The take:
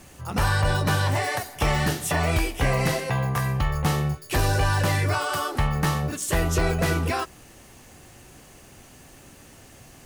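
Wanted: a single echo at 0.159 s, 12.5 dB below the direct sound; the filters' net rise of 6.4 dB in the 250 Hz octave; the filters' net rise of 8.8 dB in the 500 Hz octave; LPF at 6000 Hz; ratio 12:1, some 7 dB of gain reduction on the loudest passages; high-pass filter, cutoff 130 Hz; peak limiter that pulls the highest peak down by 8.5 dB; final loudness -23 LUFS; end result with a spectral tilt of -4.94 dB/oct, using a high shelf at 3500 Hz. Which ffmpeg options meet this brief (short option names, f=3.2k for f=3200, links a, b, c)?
-af "highpass=130,lowpass=6k,equalizer=f=250:t=o:g=8.5,equalizer=f=500:t=o:g=8.5,highshelf=f=3.5k:g=6.5,acompressor=threshold=-21dB:ratio=12,alimiter=limit=-19.5dB:level=0:latency=1,aecho=1:1:159:0.237,volume=5.5dB"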